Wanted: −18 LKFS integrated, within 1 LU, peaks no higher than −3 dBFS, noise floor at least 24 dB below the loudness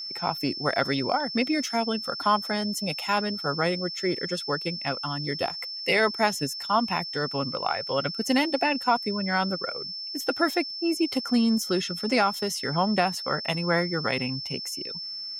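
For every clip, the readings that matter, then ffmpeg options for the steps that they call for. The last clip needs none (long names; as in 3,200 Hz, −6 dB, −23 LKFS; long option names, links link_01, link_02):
interfering tone 5,300 Hz; level of the tone −33 dBFS; integrated loudness −26.5 LKFS; sample peak −10.0 dBFS; target loudness −18.0 LKFS
→ -af "bandreject=frequency=5300:width=30"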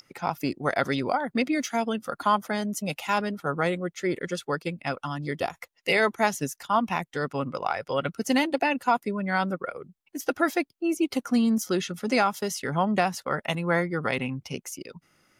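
interfering tone none found; integrated loudness −27.5 LKFS; sample peak −11.0 dBFS; target loudness −18.0 LKFS
→ -af "volume=9.5dB,alimiter=limit=-3dB:level=0:latency=1"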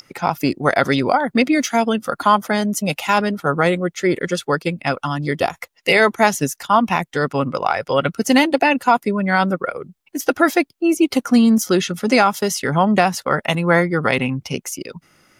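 integrated loudness −18.0 LKFS; sample peak −3.0 dBFS; background noise floor −63 dBFS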